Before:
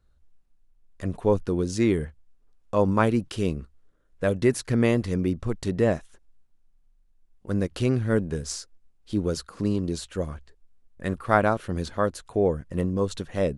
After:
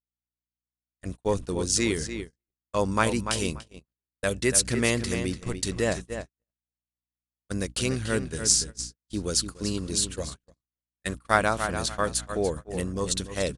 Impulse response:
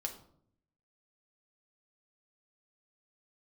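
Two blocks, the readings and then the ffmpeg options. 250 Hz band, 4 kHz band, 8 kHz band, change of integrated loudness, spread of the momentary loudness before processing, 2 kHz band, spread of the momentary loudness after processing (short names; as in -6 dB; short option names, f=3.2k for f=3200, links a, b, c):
-5.0 dB, +9.5 dB, +14.0 dB, -1.0 dB, 10 LU, +3.0 dB, 14 LU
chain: -filter_complex "[0:a]aresample=22050,aresample=44100,asplit=2[a][b];[b]adelay=291,lowpass=f=4.7k:p=1,volume=-8dB,asplit=2[c][d];[d]adelay=291,lowpass=f=4.7k:p=1,volume=0.28,asplit=2[e][f];[f]adelay=291,lowpass=f=4.7k:p=1,volume=0.28[g];[c][e][g]amix=inputs=3:normalize=0[h];[a][h]amix=inputs=2:normalize=0,crystalizer=i=9.5:c=0,aeval=exprs='val(0)+0.0224*(sin(2*PI*60*n/s)+sin(2*PI*2*60*n/s)/2+sin(2*PI*3*60*n/s)/3+sin(2*PI*4*60*n/s)/4+sin(2*PI*5*60*n/s)/5)':c=same,agate=range=-58dB:threshold=-26dB:ratio=16:detection=peak,volume=-6dB"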